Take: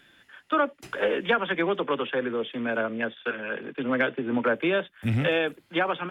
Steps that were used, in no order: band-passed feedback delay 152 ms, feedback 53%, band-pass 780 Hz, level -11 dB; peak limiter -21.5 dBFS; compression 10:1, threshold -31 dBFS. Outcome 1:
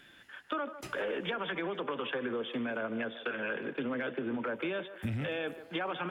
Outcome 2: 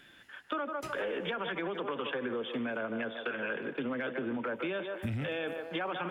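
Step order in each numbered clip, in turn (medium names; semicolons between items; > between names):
peak limiter > compression > band-passed feedback delay; band-passed feedback delay > peak limiter > compression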